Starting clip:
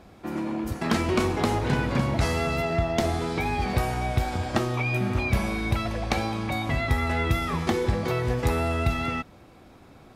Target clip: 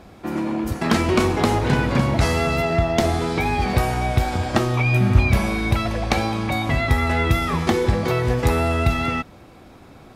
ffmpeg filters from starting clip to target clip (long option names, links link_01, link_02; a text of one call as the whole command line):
ffmpeg -i in.wav -filter_complex "[0:a]asettb=1/sr,asplit=3[link_01][link_02][link_03];[link_01]atrim=end=4.564[link_04];[link_02]atrim=start=4.56:end=5.32,asetpts=PTS-STARTPTS,afade=type=in:duration=0.004:curve=qsin,afade=type=out:start_time=0.756:duration=0.004:curve=qsin,asubboost=boost=9:cutoff=200[link_05];[link_03]atrim=start=5.316[link_06];[link_04][link_05]acrossfade=duration=0.004:curve1=hsin:curve2=qsin[link_07];[link_07][link_06]acrossfade=duration=0.004:curve1=qsin:curve2=hsin,volume=5.5dB" out.wav